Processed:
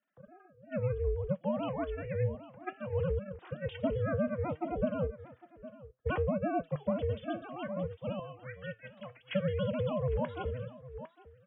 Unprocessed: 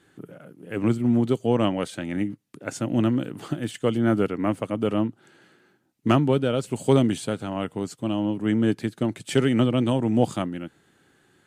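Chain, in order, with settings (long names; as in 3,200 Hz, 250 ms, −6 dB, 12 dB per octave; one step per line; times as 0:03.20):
three sine waves on the formant tracks
0:08.19–0:09.31: high-pass filter 490 Hz 24 dB per octave
on a send: single-tap delay 805 ms −15.5 dB
on the sum: ring modulation 190 Hz
downward compressor 12 to 1, threshold −25 dBFS, peak gain reduction 11.5 dB
flanger 0.62 Hz, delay 4.9 ms, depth 4.7 ms, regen +78%
multiband upward and downward expander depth 40%
level +2 dB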